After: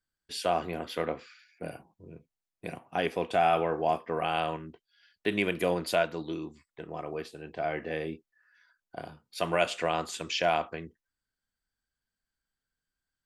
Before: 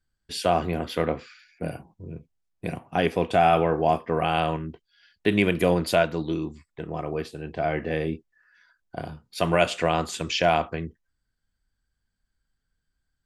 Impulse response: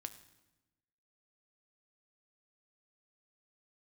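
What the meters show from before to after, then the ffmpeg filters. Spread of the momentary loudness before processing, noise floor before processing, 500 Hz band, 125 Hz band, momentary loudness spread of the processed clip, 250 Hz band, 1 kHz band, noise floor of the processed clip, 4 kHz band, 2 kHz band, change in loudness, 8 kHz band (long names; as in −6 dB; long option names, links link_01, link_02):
17 LU, −79 dBFS, −6.0 dB, −11.5 dB, 17 LU, −8.5 dB, −5.0 dB, below −85 dBFS, −4.5 dB, −4.5 dB, −5.5 dB, −4.5 dB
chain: -af "lowshelf=frequency=180:gain=-12,volume=-4.5dB"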